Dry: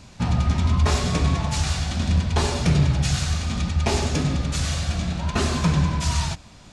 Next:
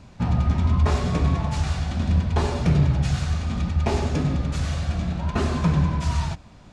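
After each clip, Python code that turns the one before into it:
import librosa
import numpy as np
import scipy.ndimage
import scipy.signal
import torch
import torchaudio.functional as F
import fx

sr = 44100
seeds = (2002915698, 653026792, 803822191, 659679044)

y = fx.high_shelf(x, sr, hz=2700.0, db=-12.0)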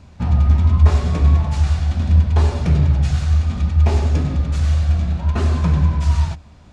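y = fx.peak_eq(x, sr, hz=75.0, db=12.5, octaves=0.26)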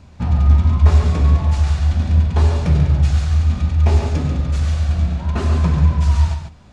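y = x + 10.0 ** (-7.0 / 20.0) * np.pad(x, (int(140 * sr / 1000.0), 0))[:len(x)]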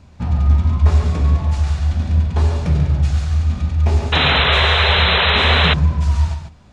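y = fx.spec_paint(x, sr, seeds[0], shape='noise', start_s=4.12, length_s=1.62, low_hz=370.0, high_hz=4100.0, level_db=-14.0)
y = y * librosa.db_to_amplitude(-1.5)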